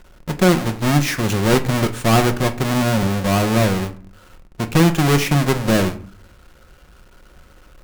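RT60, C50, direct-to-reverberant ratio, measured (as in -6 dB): 0.50 s, 16.0 dB, 7.0 dB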